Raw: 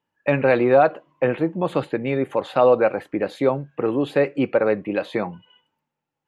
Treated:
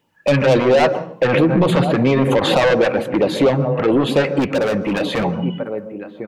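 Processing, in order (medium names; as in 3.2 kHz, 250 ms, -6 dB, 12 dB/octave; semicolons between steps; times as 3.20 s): echo from a far wall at 180 m, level -20 dB; in parallel at +1 dB: compression, threshold -26 dBFS, peak gain reduction 15 dB; on the sum: saturation -18 dBFS, distortion -7 dB; LFO notch sine 4.4 Hz 330–1800 Hz; 4.39–5.24 s: overload inside the chain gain 24 dB; on a send at -13.5 dB: reverberation RT60 0.45 s, pre-delay 120 ms; 1.30–2.74 s: on the sum: swell ahead of each attack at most 42 dB/s; trim +9 dB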